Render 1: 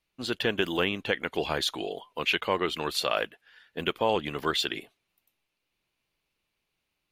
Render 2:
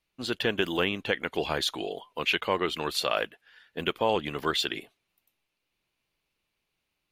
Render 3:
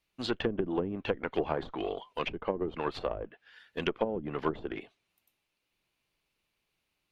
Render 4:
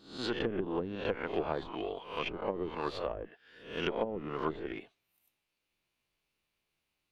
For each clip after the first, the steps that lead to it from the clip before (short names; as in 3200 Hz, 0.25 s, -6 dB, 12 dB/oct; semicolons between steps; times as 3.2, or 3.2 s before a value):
nothing audible
added harmonics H 8 -24 dB, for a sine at -10.5 dBFS; treble ducked by the level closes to 310 Hz, closed at -22 dBFS
spectral swells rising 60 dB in 0.50 s; gain -4.5 dB